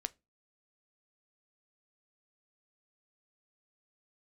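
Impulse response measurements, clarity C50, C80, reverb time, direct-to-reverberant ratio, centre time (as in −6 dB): 26.5 dB, 34.5 dB, 0.25 s, 13.5 dB, 2 ms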